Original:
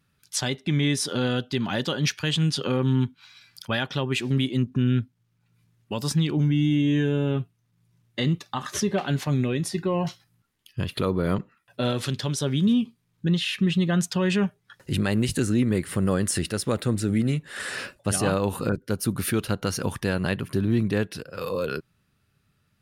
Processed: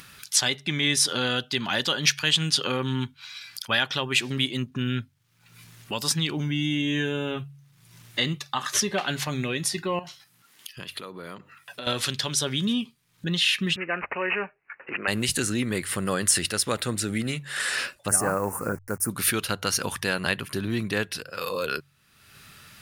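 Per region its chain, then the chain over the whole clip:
9.99–11.87 s: high-pass 150 Hz + compression 2:1, threshold -45 dBFS
13.76–15.08 s: Chebyshev band-pass 400–5800 Hz + careless resampling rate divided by 8×, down none, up filtered
18.08–19.10 s: send-on-delta sampling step -42.5 dBFS + Butterworth band-stop 3.5 kHz, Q 0.64
whole clip: tilt shelf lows -7 dB, about 710 Hz; de-hum 46.86 Hz, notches 3; upward compressor, threshold -32 dBFS

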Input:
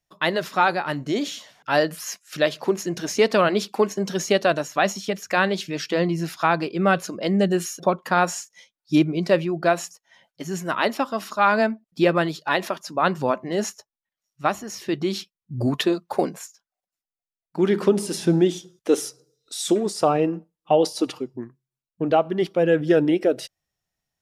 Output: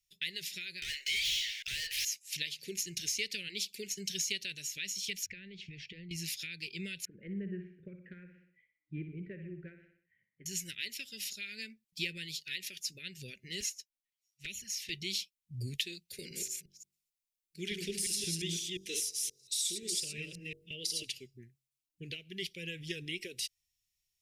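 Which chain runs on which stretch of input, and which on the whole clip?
0.82–2.05 s: median filter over 5 samples + inverse Chebyshev high-pass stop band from 160 Hz, stop band 70 dB + overdrive pedal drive 35 dB, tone 1.8 kHz, clips at -11 dBFS
5.26–6.11 s: bass shelf 260 Hz +9.5 dB + compression, threshold -27 dBFS + low-pass 1.8 kHz
7.05–10.46 s: steep low-pass 1.6 kHz + feedback delay 61 ms, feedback 49%, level -9.5 dB
13.60–14.90 s: peaking EQ 1.8 kHz +3 dB 1.6 oct + touch-sensitive flanger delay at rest 10.7 ms, full sweep at -19 dBFS
16.13–21.03 s: chunks repeated in reverse 176 ms, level -3 dB + de-hum 47.63 Hz, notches 16
whole clip: amplifier tone stack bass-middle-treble 10-0-10; compression 4:1, threshold -34 dBFS; elliptic band-stop 390–2200 Hz, stop band 50 dB; trim +3 dB

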